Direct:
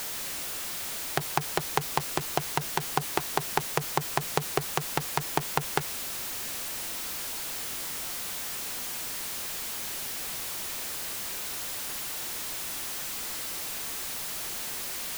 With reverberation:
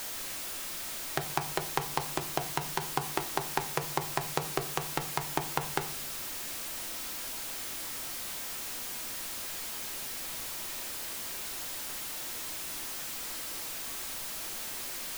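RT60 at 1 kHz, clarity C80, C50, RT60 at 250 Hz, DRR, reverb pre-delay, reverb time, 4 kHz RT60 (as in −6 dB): 0.50 s, 18.5 dB, 14.5 dB, 0.70 s, 6.5 dB, 3 ms, 0.55 s, 0.35 s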